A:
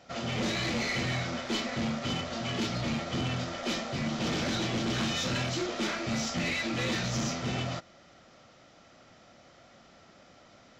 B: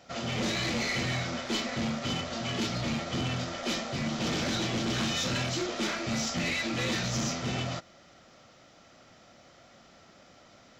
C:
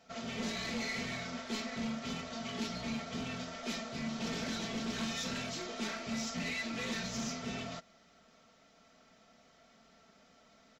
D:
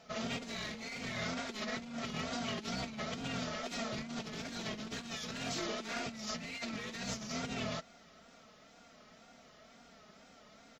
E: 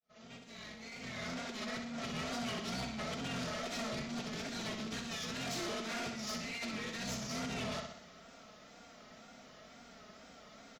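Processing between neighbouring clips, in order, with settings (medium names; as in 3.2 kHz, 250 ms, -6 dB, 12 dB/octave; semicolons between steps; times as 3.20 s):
treble shelf 5.7 kHz +4.5 dB
comb 4.5 ms, depth 66%; trim -9 dB
compressor with a negative ratio -41 dBFS, ratio -0.5; wow and flutter 90 cents; trim +1.5 dB
fade-in on the opening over 2.20 s; feedback delay 63 ms, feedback 50%, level -8 dB; saturation -37 dBFS, distortion -13 dB; trim +2.5 dB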